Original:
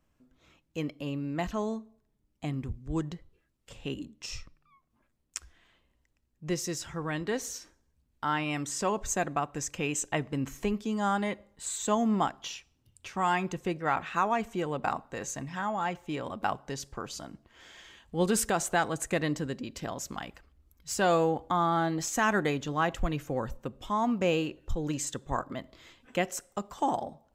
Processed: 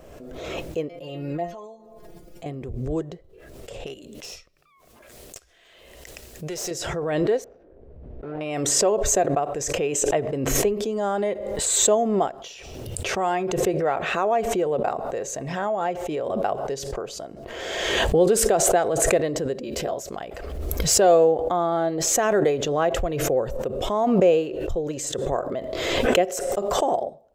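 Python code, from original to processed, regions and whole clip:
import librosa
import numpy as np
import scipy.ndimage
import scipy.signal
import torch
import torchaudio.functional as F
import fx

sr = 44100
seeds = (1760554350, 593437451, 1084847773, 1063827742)

y = fx.chain(x, sr, fx.stiff_resonator(f0_hz=170.0, decay_s=0.21, stiffness=0.002),
    fx.sustainer(db_per_s=88.0), at=(0.89, 2.46))
y = fx.chain(y, sr, fx.tilt_shelf(db=-7.5, hz=1300.0),
    fx.tube_stage(drive_db=30.0, bias=0.5), at=(3.86, 6.71))
y = fx.chain(y, sr, fx.median_filter(points=41),
    fx.lowpass(hz=1800.0, slope=12), at=(7.44, 8.41))
y = fx.chain(y, sr, fx.high_shelf(hz=11000.0, db=7.0),
    fx.doubler(ms=14.0, db=-5), at=(19.61, 20.03))
y = fx.band_shelf(y, sr, hz=510.0, db=13.0, octaves=1.2)
y = fx.pre_swell(y, sr, db_per_s=31.0)
y = y * 10.0 ** (-2.0 / 20.0)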